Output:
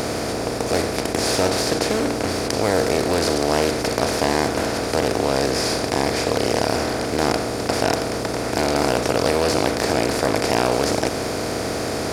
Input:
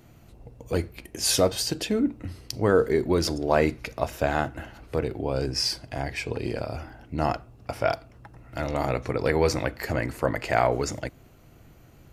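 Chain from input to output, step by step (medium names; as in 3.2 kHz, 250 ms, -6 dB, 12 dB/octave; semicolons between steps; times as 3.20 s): spectral levelling over time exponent 0.2; loudspeaker Doppler distortion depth 0.27 ms; trim -5 dB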